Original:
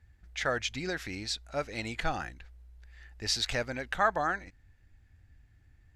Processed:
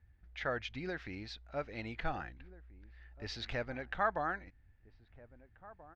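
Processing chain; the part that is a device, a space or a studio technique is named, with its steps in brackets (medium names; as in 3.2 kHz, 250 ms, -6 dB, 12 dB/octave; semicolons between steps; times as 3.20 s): shout across a valley (distance through air 260 m; echo from a far wall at 280 m, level -18 dB); trim -4.5 dB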